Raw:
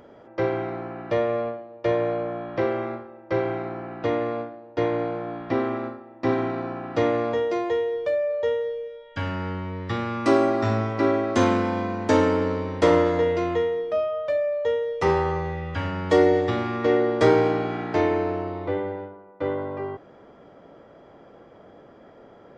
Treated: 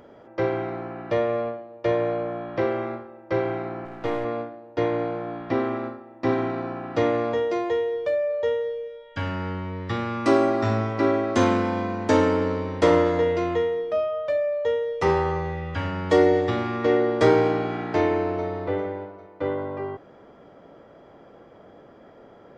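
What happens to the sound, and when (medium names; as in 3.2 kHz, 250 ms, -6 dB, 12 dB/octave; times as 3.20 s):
3.85–4.25 s: partial rectifier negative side -7 dB
17.98–18.46 s: echo throw 400 ms, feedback 35%, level -12 dB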